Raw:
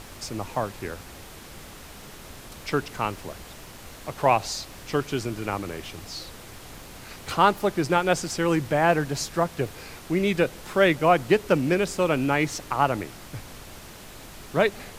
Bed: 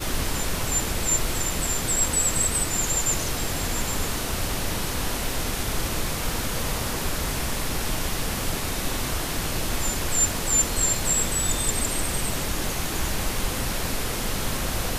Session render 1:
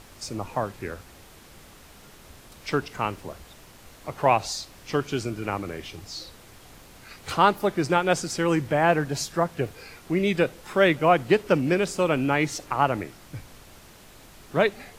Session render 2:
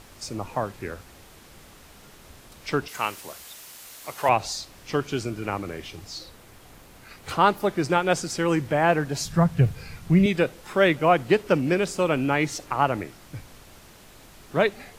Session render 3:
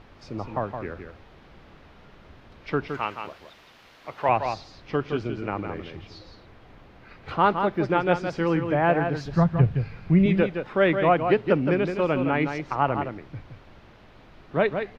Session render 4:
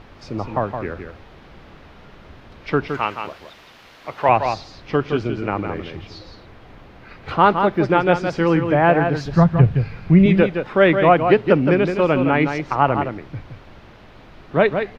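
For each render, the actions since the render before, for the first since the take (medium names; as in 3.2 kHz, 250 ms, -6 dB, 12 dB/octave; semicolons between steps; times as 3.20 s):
noise print and reduce 6 dB
2.88–4.29 s: tilt EQ +3.5 dB/octave; 6.18–7.46 s: peaking EQ 5.2 kHz -3 dB 1.9 oct; 9.25–10.26 s: resonant low shelf 220 Hz +11.5 dB, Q 1.5
distance through air 300 m; delay 167 ms -7 dB
trim +6.5 dB; peak limiter -1 dBFS, peak gain reduction 2 dB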